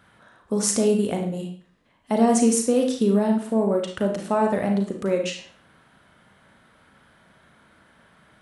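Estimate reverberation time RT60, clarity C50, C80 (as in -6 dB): 0.45 s, 6.0 dB, 10.5 dB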